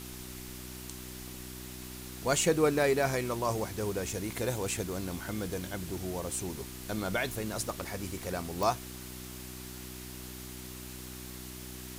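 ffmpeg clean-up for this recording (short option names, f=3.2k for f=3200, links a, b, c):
-af "adeclick=t=4,bandreject=f=62.6:t=h:w=4,bandreject=f=125.2:t=h:w=4,bandreject=f=187.8:t=h:w=4,bandreject=f=250.4:t=h:w=4,bandreject=f=313:t=h:w=4,bandreject=f=375.6:t=h:w=4,afwtdn=0.005"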